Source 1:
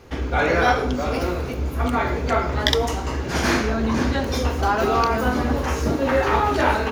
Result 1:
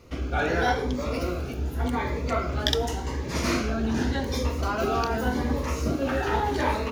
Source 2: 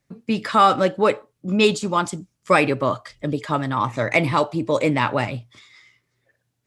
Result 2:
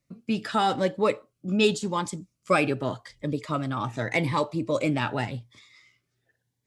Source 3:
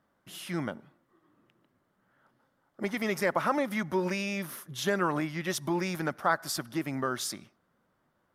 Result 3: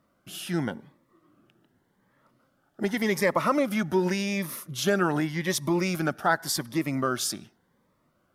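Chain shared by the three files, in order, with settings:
cascading phaser rising 0.87 Hz; match loudness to -27 LUFS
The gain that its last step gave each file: -4.0, -4.0, +5.5 dB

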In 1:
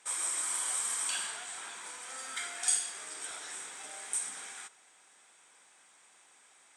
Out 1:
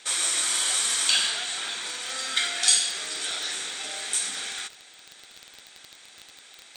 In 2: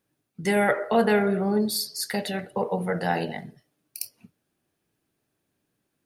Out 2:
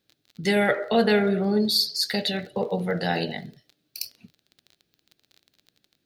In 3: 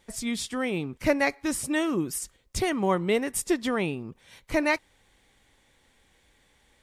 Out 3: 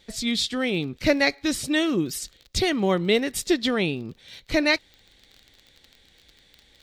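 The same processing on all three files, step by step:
crackle 24/s -40 dBFS; fifteen-band EQ 1000 Hz -8 dB, 4000 Hz +11 dB, 10000 Hz -8 dB; match loudness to -24 LUFS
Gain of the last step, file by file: +11.0, +1.5, +3.5 dB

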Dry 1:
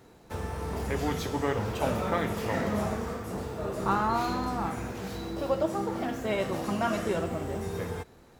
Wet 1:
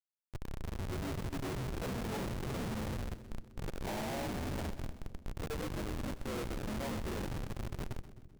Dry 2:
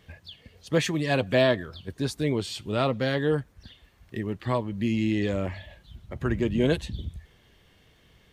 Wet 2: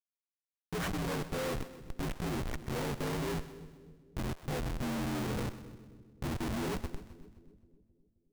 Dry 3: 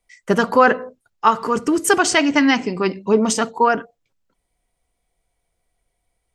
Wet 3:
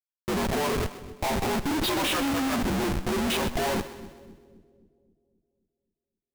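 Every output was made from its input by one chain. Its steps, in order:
inharmonic rescaling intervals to 77%; Schmitt trigger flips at -29.5 dBFS; split-band echo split 460 Hz, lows 0.264 s, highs 0.128 s, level -14 dB; gain -5 dB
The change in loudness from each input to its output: -9.5, -10.0, -9.5 LU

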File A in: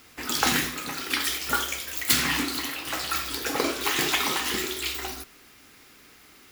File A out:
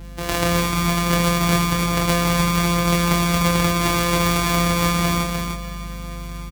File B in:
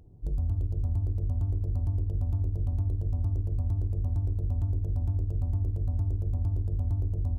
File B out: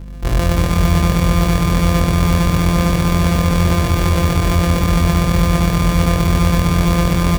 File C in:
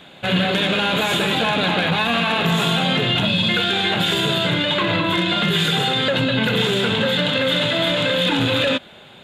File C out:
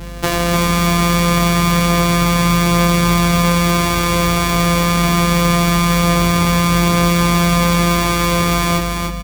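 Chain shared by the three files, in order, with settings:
sample sorter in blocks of 256 samples; AGC gain up to 8 dB; limiter -7.5 dBFS; compressor 5:1, threshold -24 dBFS; hum 50 Hz, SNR 15 dB; flange 0.24 Hz, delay 2 ms, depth 5.9 ms, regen -68%; doubler 25 ms -4 dB; feedback echo 0.301 s, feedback 24%, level -4.5 dB; normalise peaks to -3 dBFS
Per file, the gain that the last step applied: +11.5, +14.0, +14.0 dB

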